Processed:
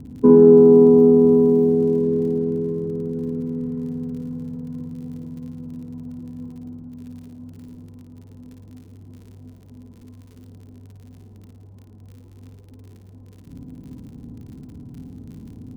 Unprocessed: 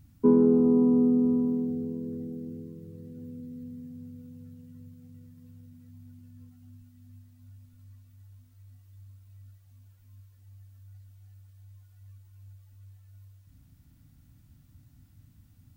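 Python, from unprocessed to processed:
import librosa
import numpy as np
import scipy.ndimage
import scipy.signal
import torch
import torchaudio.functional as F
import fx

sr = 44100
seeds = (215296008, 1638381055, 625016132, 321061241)

y = fx.bin_compress(x, sr, power=0.6)
y = fx.env_lowpass(y, sr, base_hz=500.0, full_db=-20.5)
y = fx.dmg_crackle(y, sr, seeds[0], per_s=32.0, level_db=-45.0)
y = fx.room_flutter(y, sr, wall_m=9.5, rt60_s=0.63)
y = F.gain(torch.from_numpy(y), 7.0).numpy()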